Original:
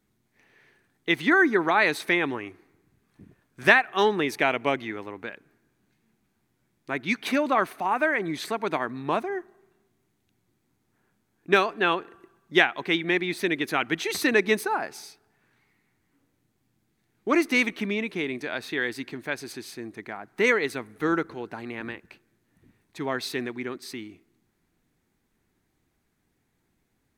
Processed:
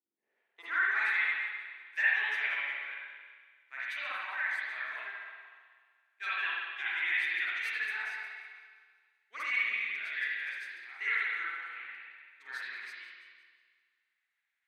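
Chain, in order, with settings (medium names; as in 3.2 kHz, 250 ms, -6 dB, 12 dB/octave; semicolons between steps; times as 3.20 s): backward echo that repeats 168 ms, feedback 70%, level -14 dB; differentiator; saturation -26.5 dBFS, distortion -13 dB; band-pass sweep 320 Hz -> 1.9 kHz, 0.12–1.66 s; granular stretch 0.54×, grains 129 ms; spring tank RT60 1.5 s, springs 44/59 ms, chirp 40 ms, DRR -9.5 dB; trim +3 dB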